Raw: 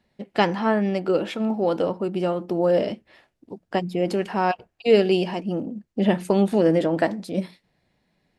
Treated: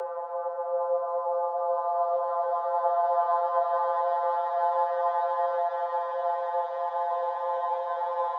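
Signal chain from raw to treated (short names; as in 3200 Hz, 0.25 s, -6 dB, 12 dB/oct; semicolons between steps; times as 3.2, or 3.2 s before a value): vocoder on a gliding note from D#3, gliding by +6 st; Paulstretch 30×, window 0.25 s, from 1.55; frequency shift +360 Hz; gain -1.5 dB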